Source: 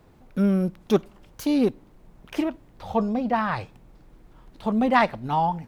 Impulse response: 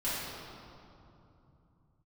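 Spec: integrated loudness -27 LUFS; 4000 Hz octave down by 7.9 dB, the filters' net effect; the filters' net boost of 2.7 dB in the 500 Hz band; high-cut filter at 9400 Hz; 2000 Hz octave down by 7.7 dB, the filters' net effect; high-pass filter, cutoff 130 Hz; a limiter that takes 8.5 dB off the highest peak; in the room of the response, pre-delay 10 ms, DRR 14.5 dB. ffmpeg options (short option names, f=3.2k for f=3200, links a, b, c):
-filter_complex "[0:a]highpass=130,lowpass=9.4k,equalizer=f=500:t=o:g=4,equalizer=f=2k:t=o:g=-8.5,equalizer=f=4k:t=o:g=-7,alimiter=limit=-15.5dB:level=0:latency=1,asplit=2[a][b];[1:a]atrim=start_sample=2205,adelay=10[c];[b][c]afir=irnorm=-1:irlink=0,volume=-22dB[d];[a][d]amix=inputs=2:normalize=0,volume=-0.5dB"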